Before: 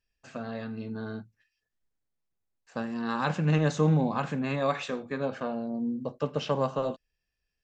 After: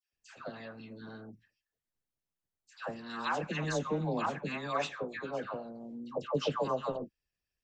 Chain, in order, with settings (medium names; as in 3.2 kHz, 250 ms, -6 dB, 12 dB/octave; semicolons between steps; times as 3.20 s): phase dispersion lows, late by 133 ms, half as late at 1.1 kHz; harmonic-percussive split harmonic -13 dB